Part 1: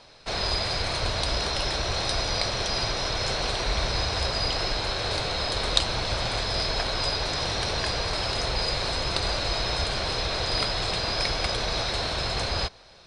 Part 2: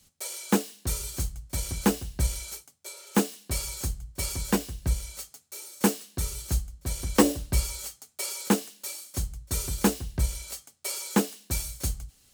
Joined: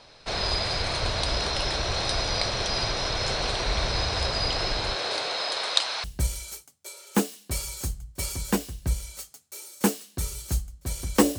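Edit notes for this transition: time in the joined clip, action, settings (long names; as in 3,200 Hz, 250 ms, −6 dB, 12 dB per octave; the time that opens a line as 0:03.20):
part 1
0:04.94–0:06.04: high-pass filter 270 Hz → 930 Hz
0:06.04: continue with part 2 from 0:02.04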